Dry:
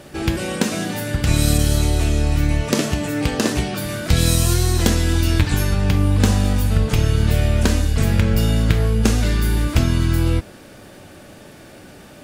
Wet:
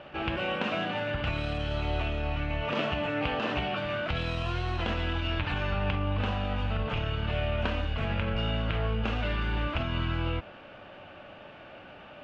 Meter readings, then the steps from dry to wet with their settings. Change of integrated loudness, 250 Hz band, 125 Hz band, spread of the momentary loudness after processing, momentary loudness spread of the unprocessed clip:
-12.0 dB, -14.0 dB, -14.0 dB, 18 LU, 5 LU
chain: limiter -11 dBFS, peak gain reduction 9 dB; ladder low-pass 3100 Hz, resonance 65%; band shelf 890 Hz +9 dB

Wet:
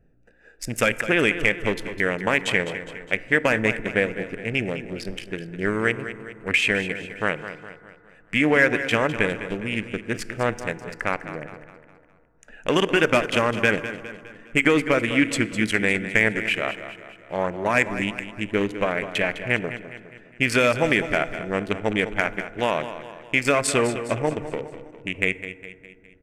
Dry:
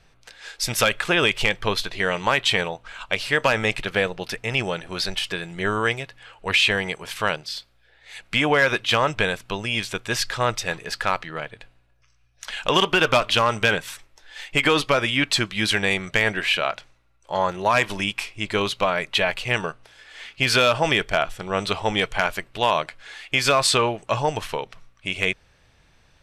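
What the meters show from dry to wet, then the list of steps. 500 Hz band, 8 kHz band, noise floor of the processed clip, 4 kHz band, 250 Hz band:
+0.5 dB, -4.0 dB, -53 dBFS, -8.5 dB, +4.0 dB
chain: Wiener smoothing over 41 samples; ten-band EQ 250 Hz +8 dB, 500 Hz +3 dB, 1000 Hz -4 dB, 2000 Hz +10 dB, 4000 Hz -11 dB, 8000 Hz +6 dB; on a send: feedback echo 0.205 s, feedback 48%, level -12 dB; on the sum: FDN reverb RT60 2.4 s, low-frequency decay 1.25×, high-frequency decay 0.35×, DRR 16.5 dB; gain -3 dB

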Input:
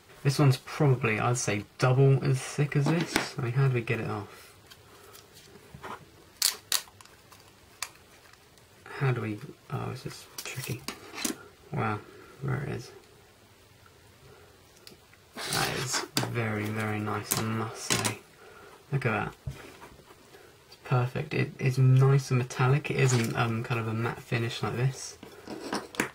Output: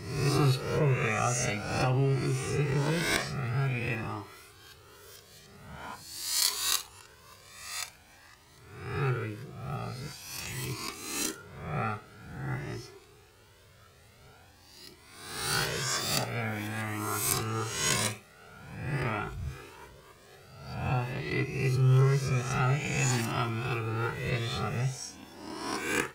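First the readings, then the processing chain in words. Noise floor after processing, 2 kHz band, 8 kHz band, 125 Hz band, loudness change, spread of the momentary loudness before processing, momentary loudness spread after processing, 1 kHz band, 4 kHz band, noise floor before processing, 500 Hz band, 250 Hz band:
-57 dBFS, 0.0 dB, +1.5 dB, -2.5 dB, -1.5 dB, 16 LU, 18 LU, -0.5 dB, +1.0 dB, -57 dBFS, -2.5 dB, -3.0 dB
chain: spectral swells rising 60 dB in 0.94 s; flutter echo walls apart 9.2 m, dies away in 0.22 s; cascading flanger rising 0.47 Hz

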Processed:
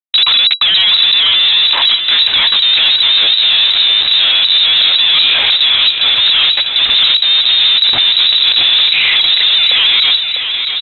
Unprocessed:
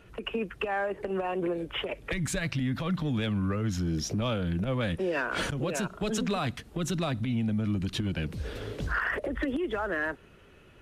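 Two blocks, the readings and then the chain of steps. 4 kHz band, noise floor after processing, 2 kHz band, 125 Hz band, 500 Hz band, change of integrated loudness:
+36.5 dB, -17 dBFS, +18.0 dB, under -10 dB, -3.0 dB, +24.0 dB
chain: HPF 300 Hz 24 dB/oct; dynamic EQ 1700 Hz, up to -6 dB, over -46 dBFS, Q 1.2; in parallel at -4 dB: crossover distortion -52 dBFS; on the sum: pump 81 bpm, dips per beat 2, -22 dB, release 0.157 s; Schmitt trigger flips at -41 dBFS; air absorption 500 m; on a send: feedback echo 0.649 s, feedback 51%, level -8 dB; on the sum: inverted band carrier 3900 Hz; maximiser +26 dB; gain -1 dB

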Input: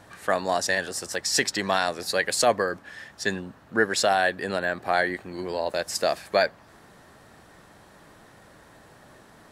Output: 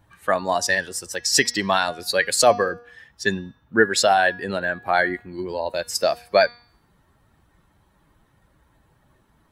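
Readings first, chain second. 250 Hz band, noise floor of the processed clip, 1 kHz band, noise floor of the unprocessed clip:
+3.5 dB, -62 dBFS, +4.0 dB, -53 dBFS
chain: per-bin expansion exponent 1.5; de-hum 239.1 Hz, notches 26; gain +7 dB

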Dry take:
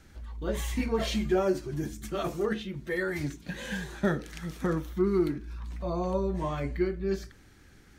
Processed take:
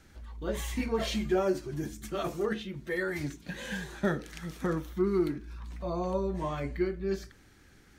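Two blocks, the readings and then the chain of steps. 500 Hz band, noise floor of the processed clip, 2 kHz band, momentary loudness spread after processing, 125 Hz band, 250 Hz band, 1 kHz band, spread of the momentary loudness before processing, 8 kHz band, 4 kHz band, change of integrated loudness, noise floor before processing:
-1.5 dB, -58 dBFS, -1.0 dB, 11 LU, -3.0 dB, -2.0 dB, -1.0 dB, 10 LU, -1.0 dB, -1.0 dB, -1.5 dB, -55 dBFS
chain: low shelf 180 Hz -3 dB; gain -1 dB

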